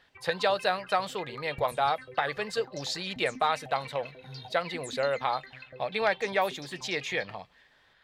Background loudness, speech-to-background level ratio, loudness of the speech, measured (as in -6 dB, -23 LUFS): -45.5 LUFS, 15.0 dB, -30.5 LUFS